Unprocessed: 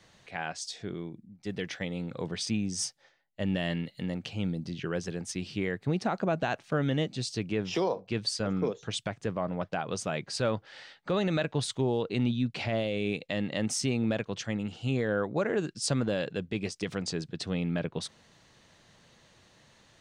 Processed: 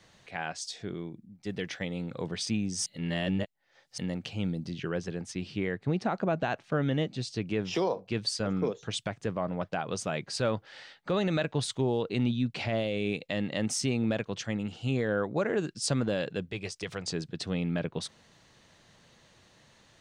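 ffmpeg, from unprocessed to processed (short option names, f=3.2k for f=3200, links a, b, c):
-filter_complex "[0:a]asettb=1/sr,asplit=3[a][b][c];[a]atrim=end=4.904[d];[b]atrim=start=4.9:end=7.47,asetpts=PTS-STARTPTS,afade=t=in:d=0.004:c=qsin,afade=t=out:st=2.566:d=0.004:c=qsin,lowpass=f=4k:p=1[e];[c]atrim=start=7.466[f];[d][e]acrossfade=d=0.004:c1=hsin:c2=qsin[g];[g][f]acrossfade=d=0.004:c1=qsin:c2=hsin,asettb=1/sr,asplit=3[h][i][j];[h]atrim=end=16.514[k];[i]atrim=start=16.51:end=17.07,asetpts=PTS-STARTPTS,afade=t=in:d=0.004:c=qsin,afade=t=out:st=0.556:d=0.004:c=qsin,equalizer=f=240:w=1.5:g=-11.5[l];[j]atrim=start=17.066[m];[k][l]acrossfade=d=0.004:c1=hsin:c2=qsin[n];[n][m]acrossfade=d=0.004:c1=qsin:c2=hsin,asplit=3[o][p][q];[o]atrim=end=2.862[r];[p]atrim=start=2.858:end=3.982,asetpts=PTS-STARTPTS,areverse[s];[q]atrim=start=3.978[t];[r][s]acrossfade=d=0.004:c1=hsin:c2=hsin[u];[u][t]acrossfade=d=0.004:c1=hsin:c2=hsin"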